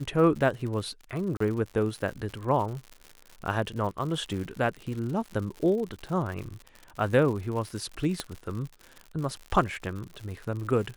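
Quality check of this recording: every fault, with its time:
crackle 110 per s -35 dBFS
1.37–1.40 s: dropout 34 ms
8.20 s: pop -15 dBFS

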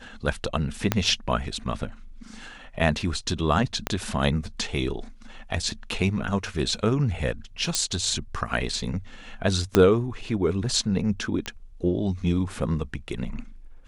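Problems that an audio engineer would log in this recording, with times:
0.92 s: pop -6 dBFS
3.87 s: pop -9 dBFS
7.75 s: pop -7 dBFS
9.75 s: pop -4 dBFS
11.46 s: pop -15 dBFS

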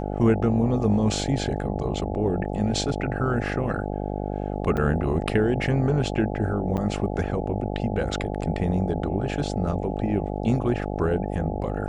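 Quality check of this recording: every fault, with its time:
buzz 50 Hz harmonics 17 -29 dBFS
4.77–4.78 s: dropout 5.6 ms
6.77–6.78 s: dropout 8.9 ms

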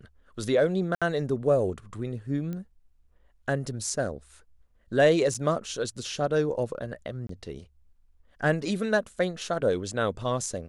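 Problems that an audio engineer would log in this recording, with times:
0.95–1.02 s: dropout 66 ms
2.53 s: pop -24 dBFS
5.34–5.35 s: dropout 6.1 ms
7.27–7.29 s: dropout 23 ms

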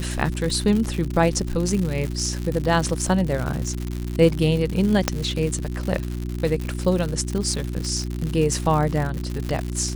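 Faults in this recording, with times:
crackle 150 per s -25 dBFS
hum 60 Hz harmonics 6 -28 dBFS
5.08 s: pop -3 dBFS

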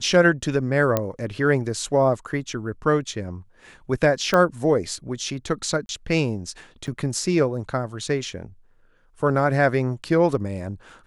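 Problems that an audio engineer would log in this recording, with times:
0.97 s: pop -7 dBFS
4.34 s: pop -8 dBFS
5.86–5.89 s: dropout 31 ms
6.87–6.88 s: dropout 6.9 ms

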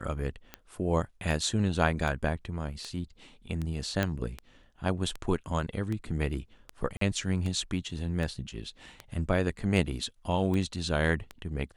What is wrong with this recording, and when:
tick 78 rpm -22 dBFS
4.03 s: pop -14 dBFS
6.97–7.01 s: dropout 43 ms

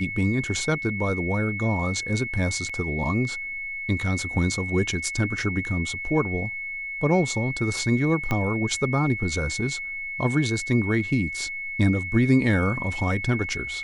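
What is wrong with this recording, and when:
whine 2.2 kHz -30 dBFS
2.69–2.70 s: dropout 5.1 ms
8.31 s: pop -12 dBFS

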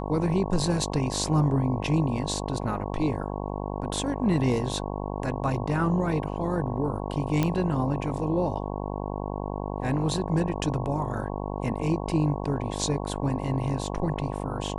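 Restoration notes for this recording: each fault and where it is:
buzz 50 Hz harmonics 22 -32 dBFS
7.43 s: pop -11 dBFS

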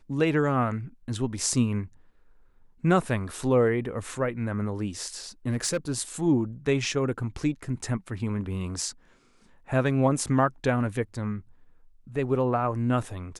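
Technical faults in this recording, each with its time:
5.48–5.92 s: clipped -21 dBFS

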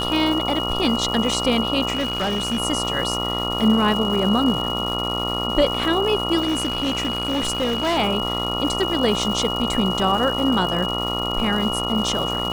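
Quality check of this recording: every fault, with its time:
buzz 60 Hz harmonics 23 -27 dBFS
crackle 420 per s -28 dBFS
whine 2.9 kHz -25 dBFS
1.93–2.60 s: clipped -18.5 dBFS
6.40–7.98 s: clipped -17.5 dBFS

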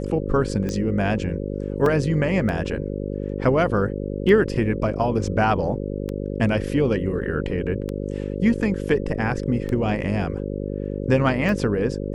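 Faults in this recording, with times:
buzz 50 Hz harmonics 11 -28 dBFS
tick 33 1/3 rpm -16 dBFS
1.86 s: dropout 2.6 ms

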